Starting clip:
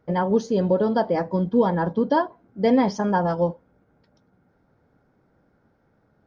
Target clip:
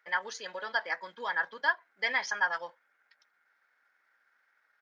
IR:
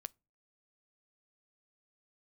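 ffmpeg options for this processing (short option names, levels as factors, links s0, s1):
-af "atempo=1.3,highpass=f=1800:t=q:w=3"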